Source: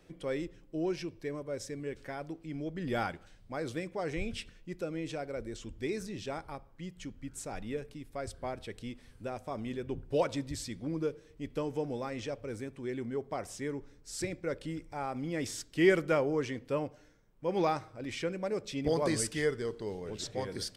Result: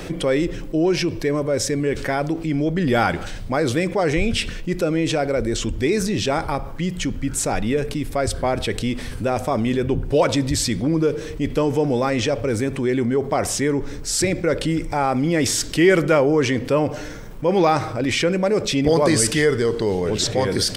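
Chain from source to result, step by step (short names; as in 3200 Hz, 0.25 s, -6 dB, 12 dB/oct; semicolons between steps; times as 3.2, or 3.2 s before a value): fast leveller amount 50%; gain +8.5 dB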